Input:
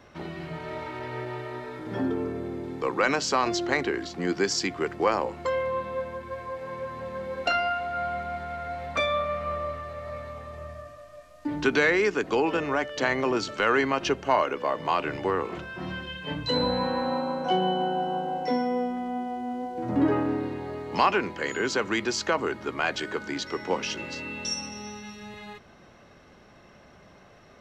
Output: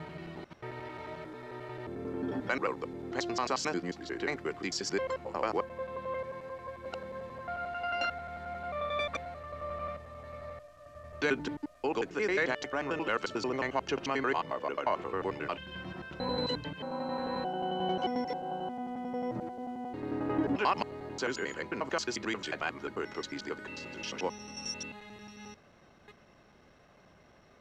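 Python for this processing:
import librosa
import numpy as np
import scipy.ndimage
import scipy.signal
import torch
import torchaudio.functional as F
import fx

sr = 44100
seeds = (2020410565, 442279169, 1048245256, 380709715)

y = fx.block_reorder(x, sr, ms=89.0, group=7)
y = y * librosa.db_to_amplitude(-7.0)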